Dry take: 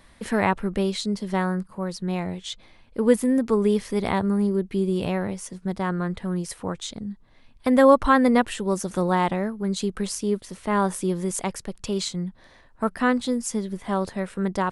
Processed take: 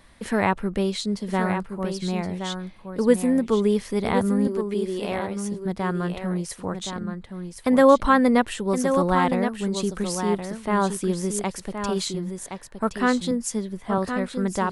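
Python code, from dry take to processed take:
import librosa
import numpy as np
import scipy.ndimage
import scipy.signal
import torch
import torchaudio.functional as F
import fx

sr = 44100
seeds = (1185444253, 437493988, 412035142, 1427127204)

y = fx.highpass(x, sr, hz=340.0, slope=12, at=(4.47, 5.5))
y = y + 10.0 ** (-7.5 / 20.0) * np.pad(y, (int(1070 * sr / 1000.0), 0))[:len(y)]
y = fx.band_widen(y, sr, depth_pct=40, at=(13.31, 13.98))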